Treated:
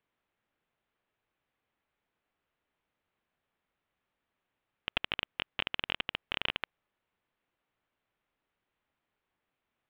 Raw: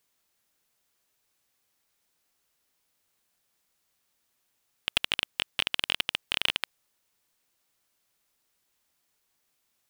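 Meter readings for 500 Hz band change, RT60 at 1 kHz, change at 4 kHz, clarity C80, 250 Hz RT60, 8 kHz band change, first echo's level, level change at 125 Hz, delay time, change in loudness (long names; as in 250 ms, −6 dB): −1.0 dB, no reverb audible, −7.5 dB, no reverb audible, no reverb audible, below −30 dB, no echo audible, 0.0 dB, no echo audible, −6.5 dB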